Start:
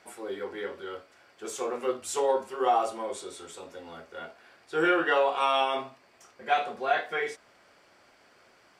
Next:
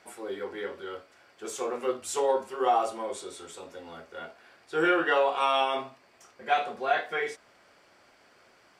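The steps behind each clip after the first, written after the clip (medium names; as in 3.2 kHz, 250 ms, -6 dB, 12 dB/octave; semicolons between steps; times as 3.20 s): no audible change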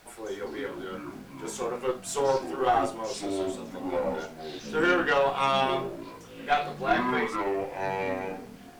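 added noise pink -58 dBFS; Chebyshev shaper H 4 -19 dB, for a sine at -12 dBFS; ever faster or slower copies 158 ms, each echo -6 st, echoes 3, each echo -6 dB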